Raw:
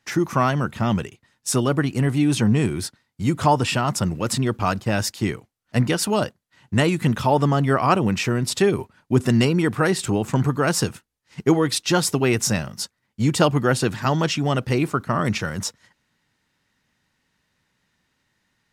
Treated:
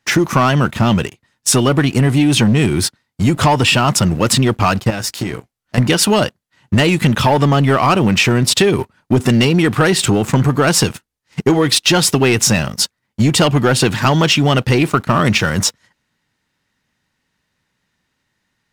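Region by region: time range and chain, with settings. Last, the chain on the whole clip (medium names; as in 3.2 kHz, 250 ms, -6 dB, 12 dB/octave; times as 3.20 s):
4.90–5.78 s: compression, threshold -29 dBFS + doubling 16 ms -8 dB
whole clip: dynamic bell 3 kHz, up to +6 dB, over -39 dBFS, Q 1.4; waveshaping leveller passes 2; compression, threshold -14 dBFS; trim +4.5 dB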